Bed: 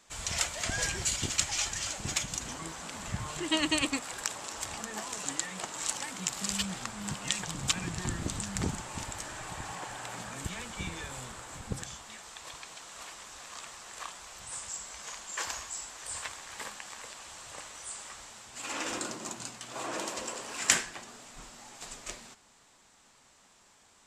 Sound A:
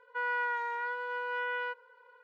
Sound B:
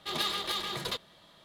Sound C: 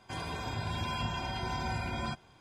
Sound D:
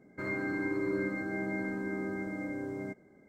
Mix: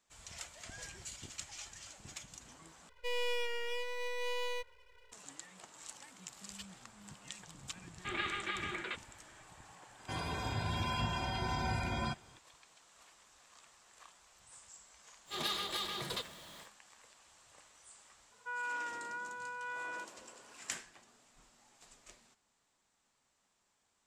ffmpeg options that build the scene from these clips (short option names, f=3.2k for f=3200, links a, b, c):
-filter_complex "[1:a]asplit=2[a][b];[2:a]asplit=2[c][d];[0:a]volume=-16.5dB[e];[a]aeval=exprs='abs(val(0))':c=same[f];[c]highpass=320,equalizer=f=330:t=q:w=4:g=7,equalizer=f=480:t=q:w=4:g=-8,equalizer=f=680:t=q:w=4:g=-8,equalizer=f=1k:t=q:w=4:g=-7,equalizer=f=1.5k:t=q:w=4:g=7,equalizer=f=2.3k:t=q:w=4:g=9,lowpass=f=2.7k:w=0.5412,lowpass=f=2.7k:w=1.3066[g];[d]aeval=exprs='val(0)+0.5*0.00631*sgn(val(0))':c=same[h];[b]aecho=1:1:4.9:0.67[i];[e]asplit=2[j][k];[j]atrim=end=2.894[l];[f]atrim=end=2.23,asetpts=PTS-STARTPTS,volume=-1.5dB[m];[k]atrim=start=5.116[n];[g]atrim=end=1.44,asetpts=PTS-STARTPTS,volume=-3.5dB,afade=t=in:d=0.004:c=hsin,afade=t=out:st=1.436:d=0.004:c=hsin,adelay=7990[o];[3:a]atrim=end=2.4,asetpts=PTS-STARTPTS,volume=-1dB,afade=t=in:d=0.004:c=hsin,afade=t=out:st=2.396:d=0.004:c=hsin,adelay=9990[p];[h]atrim=end=1.44,asetpts=PTS-STARTPTS,volume=-6dB,afade=t=in:d=0.1,afade=t=out:st=1.34:d=0.1,adelay=15250[q];[i]atrim=end=2.23,asetpts=PTS-STARTPTS,volume=-9.5dB,afade=t=in:d=0.004:c=hsin,afade=t=out:st=2.226:d=0.004:c=hsin,adelay=18310[r];[l][m]acrossfade=d=0.004:c1=hsin:c2=hsin[s];[s][n]acrossfade=d=0.004:c1=hsin:c2=hsin[t];[t][o][p][q][r]amix=inputs=5:normalize=0"